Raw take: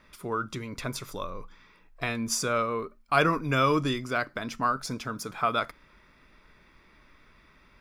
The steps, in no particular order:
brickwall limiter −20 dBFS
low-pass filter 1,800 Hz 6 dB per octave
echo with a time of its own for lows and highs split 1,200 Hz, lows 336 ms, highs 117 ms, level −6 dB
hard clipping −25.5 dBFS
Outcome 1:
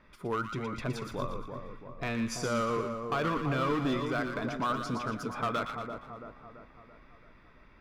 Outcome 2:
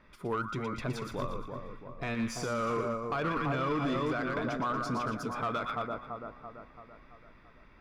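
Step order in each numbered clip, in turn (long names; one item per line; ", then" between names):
low-pass filter, then brickwall limiter, then hard clipping, then echo with a time of its own for lows and highs
echo with a time of its own for lows and highs, then brickwall limiter, then hard clipping, then low-pass filter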